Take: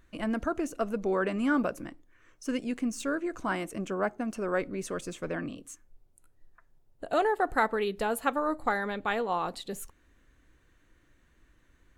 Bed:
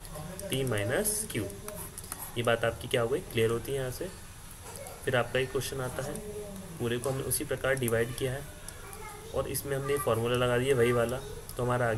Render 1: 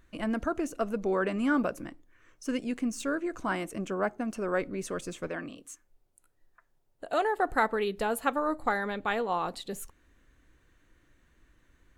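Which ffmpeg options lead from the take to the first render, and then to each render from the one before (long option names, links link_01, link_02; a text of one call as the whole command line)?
ffmpeg -i in.wav -filter_complex "[0:a]asettb=1/sr,asplit=3[link_01][link_02][link_03];[link_01]atrim=end=5.274[link_04];[link_02]atrim=start=5.27:end=7.35,asetpts=PTS-STARTPTS,afade=type=in:duration=0.004:curve=qsin,afade=type=out:start_time=2.076:duration=0.004:curve=qsin,lowshelf=frequency=260:gain=-9.5[link_05];[link_03]atrim=start=7.346[link_06];[link_04][link_05]acrossfade=duration=0.004:curve1=hsin:curve2=qsin[link_07];[link_07][link_06]acrossfade=duration=0.004:curve1=qsin:curve2=hsin" out.wav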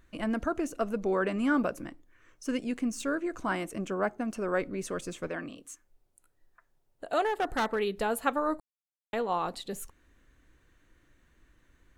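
ffmpeg -i in.wav -filter_complex "[0:a]asettb=1/sr,asplit=3[link_01][link_02][link_03];[link_01]atrim=end=7.244[link_04];[link_02]atrim=start=7.24:end=7.79,asetpts=PTS-STARTPTS,afade=type=in:duration=0.004:curve=qsin,afade=type=out:start_time=0.546:duration=0.004:curve=qsin,asoftclip=type=hard:threshold=-24dB[link_05];[link_03]atrim=start=7.786[link_06];[link_04][link_05]acrossfade=duration=0.004:curve1=hsin:curve2=qsin[link_07];[link_07][link_06]acrossfade=duration=0.004:curve1=qsin:curve2=hsin,asplit=3[link_08][link_09][link_10];[link_08]atrim=end=8.6,asetpts=PTS-STARTPTS,afade=type=out:start_time=8.596:duration=0.004:curve=hsin[link_11];[link_09]atrim=start=8.6:end=9.13,asetpts=PTS-STARTPTS,volume=0[link_12];[link_10]atrim=start=9.13,asetpts=PTS-STARTPTS,afade=type=in:duration=0.004:curve=hsin[link_13];[link_11][link_12][link_13]concat=n=3:v=0:a=1" out.wav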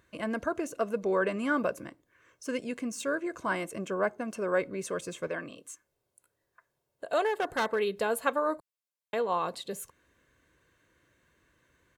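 ffmpeg -i in.wav -af "highpass=120,aecho=1:1:1.9:0.41" out.wav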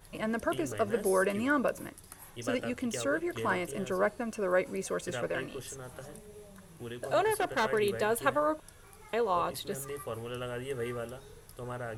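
ffmpeg -i in.wav -i bed.wav -filter_complex "[1:a]volume=-10.5dB[link_01];[0:a][link_01]amix=inputs=2:normalize=0" out.wav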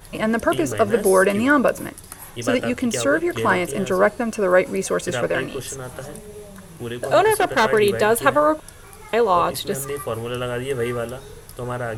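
ffmpeg -i in.wav -af "volume=12dB,alimiter=limit=-2dB:level=0:latency=1" out.wav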